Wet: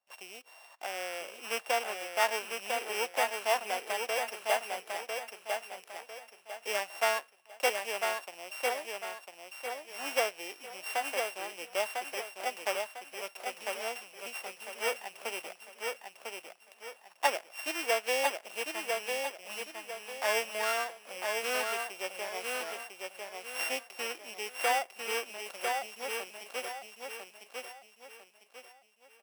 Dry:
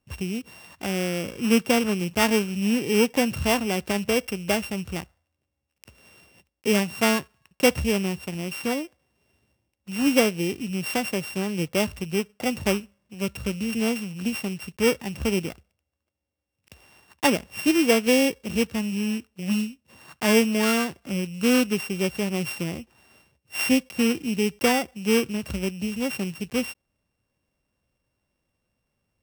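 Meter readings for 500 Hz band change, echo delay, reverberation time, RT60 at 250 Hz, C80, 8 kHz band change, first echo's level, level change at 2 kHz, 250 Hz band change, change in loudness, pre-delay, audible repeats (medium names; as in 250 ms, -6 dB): -9.0 dB, 1000 ms, no reverb, no reverb, no reverb, -7.0 dB, -4.0 dB, -5.0 dB, -30.0 dB, -9.5 dB, no reverb, 4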